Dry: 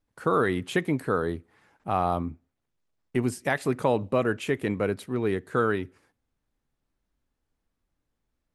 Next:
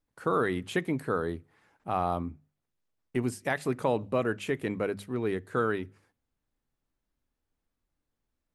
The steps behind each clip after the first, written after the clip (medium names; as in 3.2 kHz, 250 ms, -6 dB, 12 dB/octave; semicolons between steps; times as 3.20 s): hum notches 50/100/150/200 Hz; trim -3.5 dB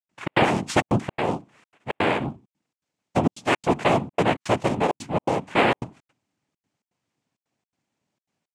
noise-vocoded speech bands 4; trance gate ".xx.xxxxx" 165 bpm -60 dB; trim +8.5 dB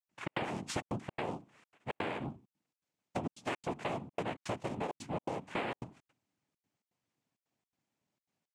compression 6:1, threshold -27 dBFS, peak gain reduction 12.5 dB; trim -7 dB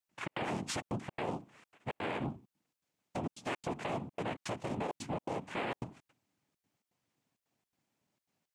peak limiter -30.5 dBFS, peak gain reduction 9.5 dB; trim +3.5 dB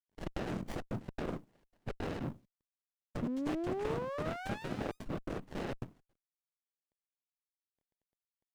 companding laws mixed up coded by A; painted sound rise, 3.22–5.08 s, 230–1400 Hz -36 dBFS; sliding maximum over 33 samples; trim +1.5 dB